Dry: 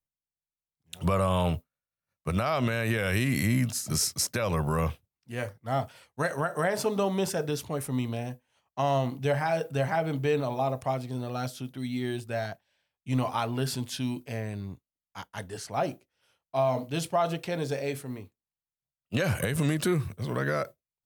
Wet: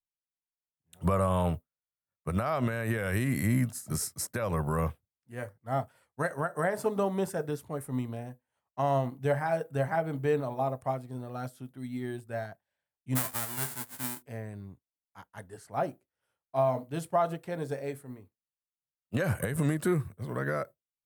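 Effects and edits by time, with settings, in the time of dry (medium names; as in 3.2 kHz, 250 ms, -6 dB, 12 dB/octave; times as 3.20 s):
13.15–14.21 s: formants flattened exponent 0.1
whole clip: high-order bell 3.9 kHz -8.5 dB; upward expansion 1.5:1, over -41 dBFS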